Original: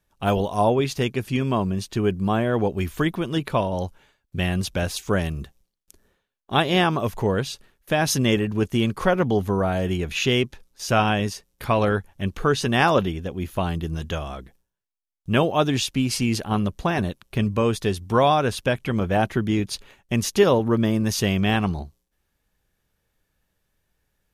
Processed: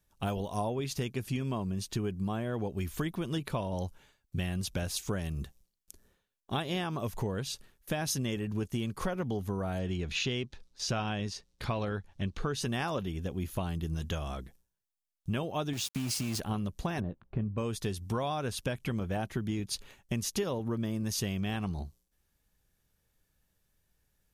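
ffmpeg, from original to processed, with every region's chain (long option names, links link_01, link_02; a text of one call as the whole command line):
ffmpeg -i in.wav -filter_complex "[0:a]asettb=1/sr,asplit=3[link_01][link_02][link_03];[link_01]atrim=end=9.794[link_04];[link_02]atrim=start=9.79:end=12.54,asetpts=PTS-STARTPTS,afade=type=in:duration=0.004:curve=qsin,afade=type=out:start_time=2.746:duration=0.004:curve=qsin,lowpass=5900,equalizer=frequency=4100:width=2.8:gain=4[link_05];[link_03]atrim=start=12.536[link_06];[link_04][link_05]acrossfade=duration=0.004:curve1=hsin:curve2=qsin[link_07];[link_07][link_06]acrossfade=duration=0.004:curve1=qsin:curve2=hsin,asettb=1/sr,asplit=3[link_08][link_09][link_10];[link_08]atrim=end=15.734[link_11];[link_09]atrim=start=15.73:end=16.4,asetpts=PTS-STARTPTS,afade=type=in:duration=0.004:curve=qsin,afade=type=out:start_time=0.666:duration=0.004:curve=qsin,highpass=69,acompressor=threshold=-23dB:ratio=6:attack=3.2:release=140:knee=1:detection=peak,aeval=exprs='val(0)*gte(abs(val(0)),0.0237)':channel_layout=same[link_12];[link_10]atrim=start=16.396[link_13];[link_11][link_12]acrossfade=duration=0.004:curve1=hsin:curve2=qsin[link_14];[link_14][link_13]acrossfade=duration=0.004:curve1=qsin:curve2=hsin,asettb=1/sr,asplit=3[link_15][link_16][link_17];[link_15]atrim=end=17.004[link_18];[link_16]atrim=start=17:end=17.58,asetpts=PTS-STARTPTS,afade=type=in:duration=0.004:curve=qsin,afade=type=out:start_time=0.576:duration=0.004:curve=qsin,lowpass=1100,asplit=2[link_19][link_20];[link_20]adelay=18,volume=-14dB[link_21];[link_19][link_21]amix=inputs=2:normalize=0,atrim=end_sample=25578[link_22];[link_17]atrim=start=17.576[link_23];[link_18][link_22]acrossfade=duration=0.004:curve1=hsin:curve2=qsin[link_24];[link_24][link_23]acrossfade=duration=0.004:curve1=qsin:curve2=hsin,bass=frequency=250:gain=4,treble=frequency=4000:gain=6,acompressor=threshold=-24dB:ratio=6,volume=-5.5dB" out.wav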